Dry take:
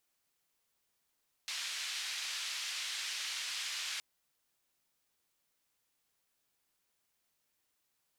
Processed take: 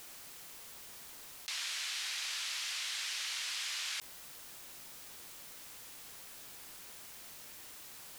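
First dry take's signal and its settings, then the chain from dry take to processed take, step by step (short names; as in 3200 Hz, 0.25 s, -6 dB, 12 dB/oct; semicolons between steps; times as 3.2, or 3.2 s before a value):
noise band 2100–4700 Hz, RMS -39.5 dBFS 2.52 s
fast leveller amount 70%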